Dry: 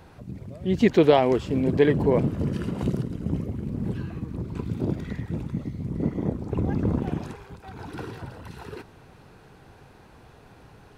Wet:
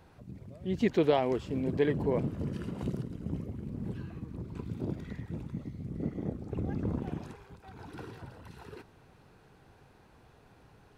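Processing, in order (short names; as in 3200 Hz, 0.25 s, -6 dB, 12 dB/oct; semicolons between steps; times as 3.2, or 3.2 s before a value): 5.79–6.81 notch 970 Hz, Q 5.8; gain -8.5 dB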